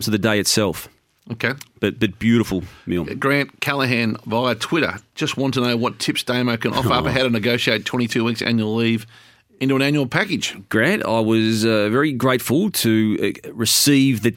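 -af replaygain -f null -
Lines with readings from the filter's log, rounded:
track_gain = +0.0 dB
track_peak = 0.606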